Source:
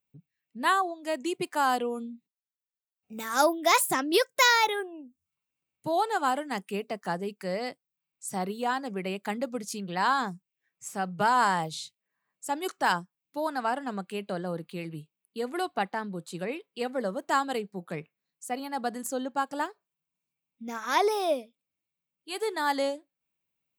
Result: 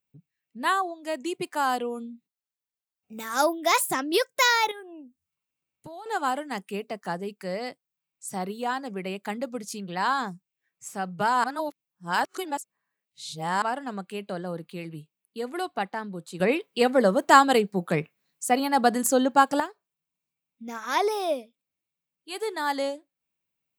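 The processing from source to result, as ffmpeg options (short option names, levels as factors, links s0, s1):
-filter_complex "[0:a]asettb=1/sr,asplit=3[s0][s1][s2];[s0]atrim=end=4.714[s3];[s1]atrim=start=4.71:end=6.06,asetpts=PTS-STARTPTS,afade=t=in:d=0.004:c=qsin,afade=t=out:st=1.346:d=0.004:c=qsin,acompressor=threshold=0.0112:ratio=6:attack=3.2:release=140:knee=1:detection=peak[s4];[s2]atrim=start=6.056[s5];[s3][s4]acrossfade=d=0.004:c1=hsin:c2=qsin[s6];[s6][s5]acrossfade=d=0.004:c1=qsin:c2=hsin,asplit=5[s7][s8][s9][s10][s11];[s7]atrim=end=11.442[s12];[s8]atrim=start=11.438:end=13.622,asetpts=PTS-STARTPTS,areverse[s13];[s9]atrim=start=13.618:end=16.402[s14];[s10]atrim=start=16.398:end=19.602,asetpts=PTS-STARTPTS,volume=3.35[s15];[s11]atrim=start=19.598[s16];[s12][s13]acrossfade=d=0.004:c1=hsin:c2=hsin[s17];[s17][s14]acrossfade=d=0.004:c1=hsin:c2=hsin[s18];[s18][s15]acrossfade=d=0.004:c1=hsin:c2=hsin[s19];[s19][s16]acrossfade=d=0.004:c1=hsin:c2=hsin"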